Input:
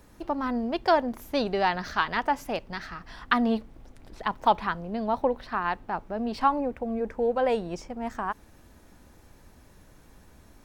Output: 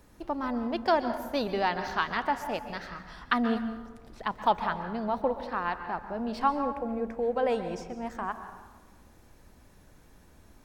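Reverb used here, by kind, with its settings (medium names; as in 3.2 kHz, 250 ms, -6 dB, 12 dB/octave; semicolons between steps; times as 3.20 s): plate-style reverb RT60 1.2 s, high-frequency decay 0.55×, pre-delay 115 ms, DRR 9 dB; trim -3 dB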